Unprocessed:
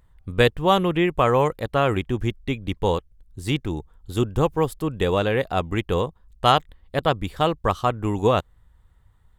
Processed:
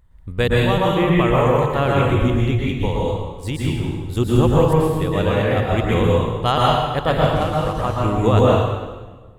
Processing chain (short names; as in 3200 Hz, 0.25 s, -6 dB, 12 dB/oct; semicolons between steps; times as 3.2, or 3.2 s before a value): 7.18–7.76 CVSD 64 kbps; low shelf 150 Hz +6 dB; 2.93–3.68 compressor, threshold -21 dBFS, peak gain reduction 6 dB; random-step tremolo; reverb RT60 1.3 s, pre-delay 0.111 s, DRR -4.5 dB